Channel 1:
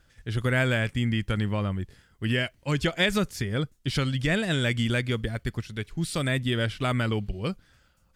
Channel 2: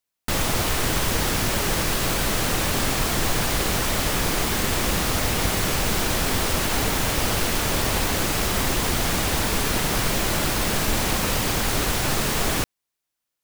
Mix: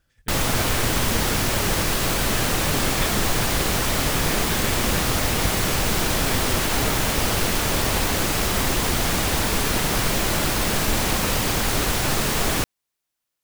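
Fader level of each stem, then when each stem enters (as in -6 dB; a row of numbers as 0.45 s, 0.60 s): -7.5 dB, +1.0 dB; 0.00 s, 0.00 s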